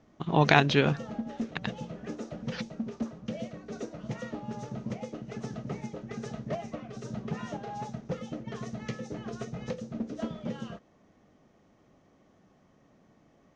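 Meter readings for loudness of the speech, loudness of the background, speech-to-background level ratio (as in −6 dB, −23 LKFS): −24.5 LKFS, −38.5 LKFS, 14.0 dB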